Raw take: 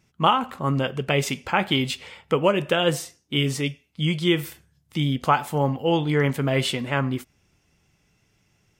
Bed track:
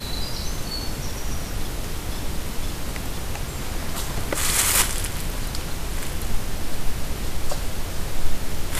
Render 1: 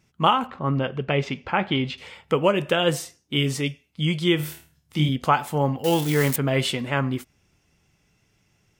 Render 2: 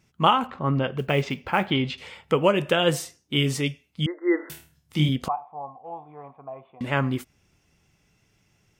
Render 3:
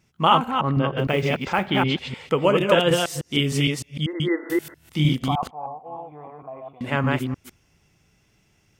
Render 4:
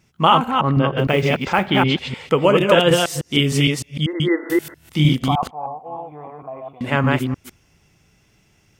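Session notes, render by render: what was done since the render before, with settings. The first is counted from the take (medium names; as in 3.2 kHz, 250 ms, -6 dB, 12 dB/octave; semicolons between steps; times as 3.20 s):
0.47–1.98 s: distance through air 210 m; 4.37–5.09 s: flutter echo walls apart 4.5 m, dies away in 0.35 s; 5.84–6.36 s: zero-crossing glitches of -18.5 dBFS
0.98–1.71 s: short-mantissa float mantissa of 4-bit; 4.06–4.50 s: brick-wall FIR band-pass 260–2100 Hz; 5.28–6.81 s: cascade formant filter a
chunks repeated in reverse 153 ms, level -1 dB
trim +4.5 dB; peak limiter -2 dBFS, peak gain reduction 2.5 dB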